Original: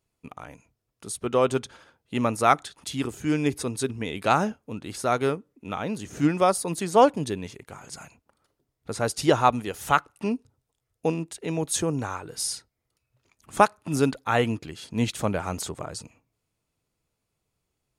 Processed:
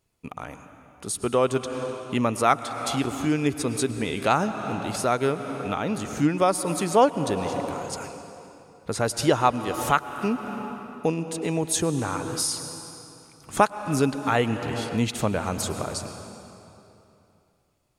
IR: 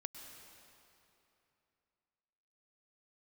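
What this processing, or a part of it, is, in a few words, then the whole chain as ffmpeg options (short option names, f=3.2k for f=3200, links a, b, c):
ducked reverb: -filter_complex "[0:a]asplit=3[a][b][c];[1:a]atrim=start_sample=2205[d];[b][d]afir=irnorm=-1:irlink=0[e];[c]apad=whole_len=793155[f];[e][f]sidechaincompress=threshold=-29dB:ratio=4:attack=16:release=333,volume=8.5dB[g];[a][g]amix=inputs=2:normalize=0,volume=-3.5dB"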